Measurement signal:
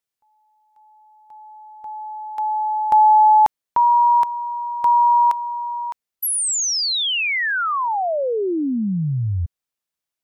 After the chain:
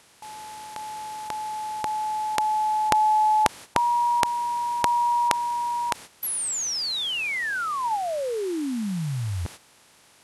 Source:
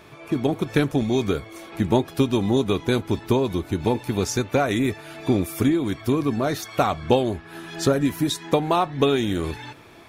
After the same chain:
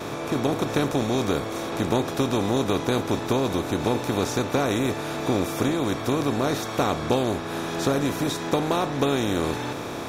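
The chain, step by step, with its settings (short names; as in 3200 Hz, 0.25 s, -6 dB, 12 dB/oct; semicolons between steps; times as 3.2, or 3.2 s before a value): per-bin compression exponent 0.4; gate -31 dBFS, range -12 dB; gain -8 dB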